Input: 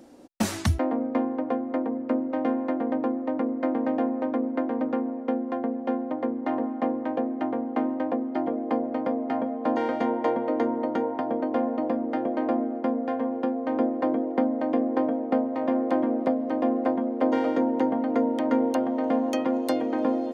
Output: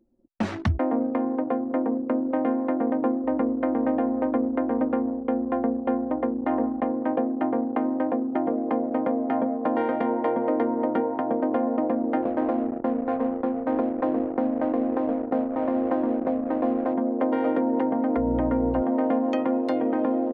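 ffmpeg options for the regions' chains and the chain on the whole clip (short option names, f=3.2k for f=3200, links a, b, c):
-filter_complex "[0:a]asettb=1/sr,asplit=3[a][b][c];[a]atrim=end=3.244[d];[b]atrim=start=3.24:end=6.91,asetpts=PTS-STARTPTS,afade=t=in:d=0.004:c=qsin,afade=t=out:st=3.666:d=0.004:c=qsin,lowpass=7.9k,aeval=exprs='val(0)+0.00224*(sin(2*PI*60*n/s)+sin(2*PI*2*60*n/s)/2+sin(2*PI*3*60*n/s)/3+sin(2*PI*4*60*n/s)/4+sin(2*PI*5*60*n/s)/5)':c=same[e];[c]atrim=start=6.906[f];[d][e]acrossfade=d=0.004:c1=hsin:c2=qsin[g];[g][f]acrossfade=d=0.004:c1=qsin:c2=hsin,asettb=1/sr,asplit=3[h][i][j];[h]atrim=end=12.224[k];[i]atrim=start=12.22:end=16.94,asetpts=PTS-STARTPTS,afade=t=in:d=0.004:c=qsin,afade=t=out:st=4.716:d=0.004:c=qsin,lowpass=1.8k,bandreject=f=50:t=h:w=6,bandreject=f=100:t=h:w=6,bandreject=f=150:t=h:w=6,bandreject=f=200:t=h:w=6,bandreject=f=250:t=h:w=6,aeval=exprs='sgn(val(0))*max(abs(val(0))-0.00841,0)':c=same[l];[j]atrim=start=16.936[m];[k][l]acrossfade=d=0.004:c1=hsin:c2=qsin[n];[n][m]acrossfade=d=0.004:c1=qsin:c2=hsin,asettb=1/sr,asplit=3[o][p][q];[o]atrim=end=18.174[r];[p]atrim=start=18.17:end=18.82,asetpts=PTS-STARTPTS,afade=t=in:d=0.004:c=qsin,afade=t=out:st=0.646:d=0.004:c=qsin,lowpass=f=1.5k:p=1,aeval=exprs='val(0)+0.0251*(sin(2*PI*60*n/s)+sin(2*PI*2*60*n/s)/2+sin(2*PI*3*60*n/s)/3+sin(2*PI*4*60*n/s)/4+sin(2*PI*5*60*n/s)/5)':c=same[s];[q]atrim=start=18.816[t];[r][s]acrossfade=d=0.004:c1=hsin:c2=qsin[u];[u][t]acrossfade=d=0.004:c1=qsin:c2=hsin,anlmdn=10,lowpass=2.6k,alimiter=limit=-18.5dB:level=0:latency=1:release=181,volume=4dB"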